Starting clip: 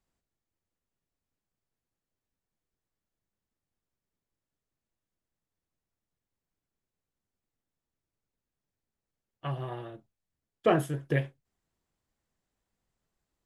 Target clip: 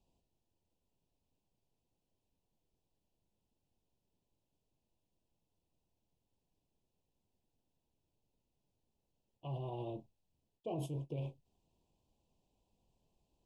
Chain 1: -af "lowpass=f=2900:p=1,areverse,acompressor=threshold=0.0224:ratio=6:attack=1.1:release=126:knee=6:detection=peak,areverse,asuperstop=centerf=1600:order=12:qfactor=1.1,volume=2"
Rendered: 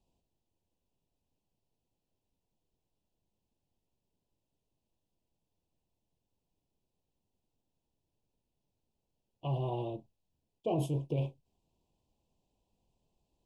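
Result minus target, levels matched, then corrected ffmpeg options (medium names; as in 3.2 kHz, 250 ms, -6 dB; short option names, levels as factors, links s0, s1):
compression: peak gain reduction -8.5 dB
-af "lowpass=f=2900:p=1,areverse,acompressor=threshold=0.00708:ratio=6:attack=1.1:release=126:knee=6:detection=peak,areverse,asuperstop=centerf=1600:order=12:qfactor=1.1,volume=2"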